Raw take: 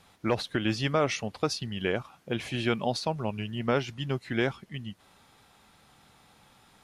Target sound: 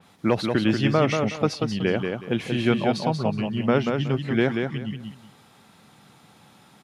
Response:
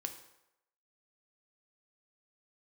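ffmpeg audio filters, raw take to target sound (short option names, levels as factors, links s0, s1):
-af "highpass=98,equalizer=f=190:t=o:w=1.9:g=6,aecho=1:1:185|370|555:0.562|0.135|0.0324,adynamicequalizer=threshold=0.00447:dfrequency=3900:dqfactor=0.7:tfrequency=3900:tqfactor=0.7:attack=5:release=100:ratio=0.375:range=3.5:mode=cutabove:tftype=highshelf,volume=1.41"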